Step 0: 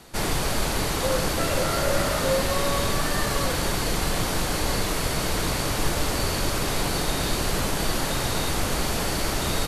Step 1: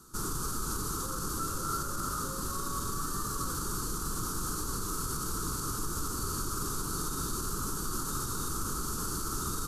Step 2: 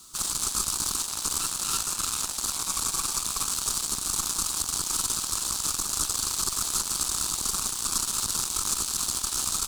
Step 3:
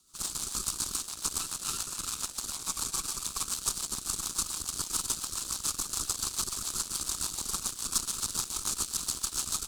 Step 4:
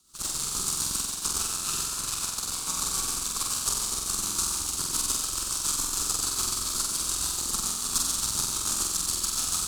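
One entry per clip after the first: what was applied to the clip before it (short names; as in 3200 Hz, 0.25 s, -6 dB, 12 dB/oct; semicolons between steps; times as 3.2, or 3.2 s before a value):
limiter -17.5 dBFS, peak gain reduction 8.5 dB; EQ curve 400 Hz 0 dB, 650 Hz -22 dB, 1300 Hz +9 dB, 2000 Hz -24 dB, 6400 Hz +5 dB; gain -7 dB
added harmonics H 3 -19 dB, 5 -18 dB, 6 -18 dB, 7 -11 dB, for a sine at -20.5 dBFS; requantised 10-bit, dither triangular; ten-band EQ 125 Hz -4 dB, 500 Hz -6 dB, 1000 Hz +6 dB, 2000 Hz -8 dB, 4000 Hz +10 dB, 8000 Hz +11 dB
rotary speaker horn 7 Hz; upward expander 1.5:1, over -49 dBFS
flutter echo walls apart 7.9 m, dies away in 1.1 s; gain +1.5 dB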